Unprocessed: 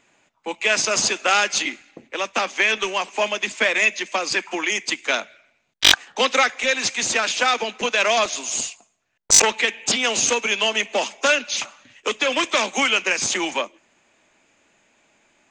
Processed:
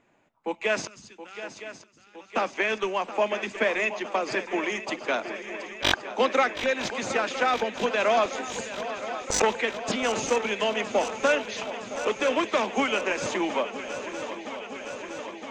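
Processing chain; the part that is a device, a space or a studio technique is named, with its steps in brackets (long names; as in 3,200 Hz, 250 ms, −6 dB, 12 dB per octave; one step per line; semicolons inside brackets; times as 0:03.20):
through cloth (high-shelf EQ 2,100 Hz −17 dB)
0:00.87–0:02.35: guitar amp tone stack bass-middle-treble 6-0-2
feedback echo with a long and a short gap by turns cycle 964 ms, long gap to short 3 to 1, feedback 75%, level −13 dB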